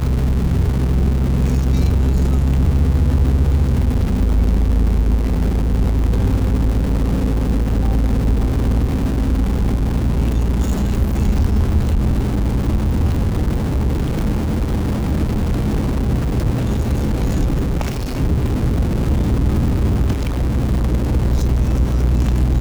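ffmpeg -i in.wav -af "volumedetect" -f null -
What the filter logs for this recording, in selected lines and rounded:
mean_volume: -15.7 dB
max_volume: -4.7 dB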